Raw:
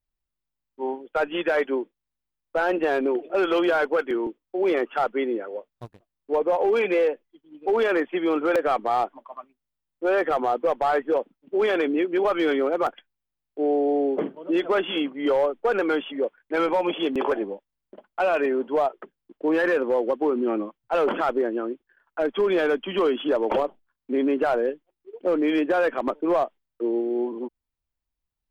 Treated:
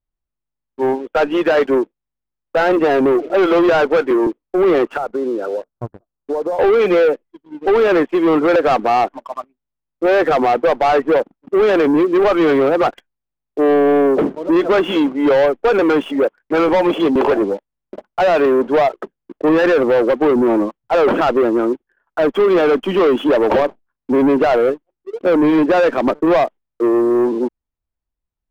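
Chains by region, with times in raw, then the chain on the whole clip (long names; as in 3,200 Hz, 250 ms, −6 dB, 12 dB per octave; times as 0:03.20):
0:04.97–0:06.59: Chebyshev low-pass filter 1,500 Hz, order 4 + downward compressor 12 to 1, threshold −30 dBFS
whole clip: low-pass filter 1,100 Hz 6 dB per octave; leveller curve on the samples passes 2; level +7 dB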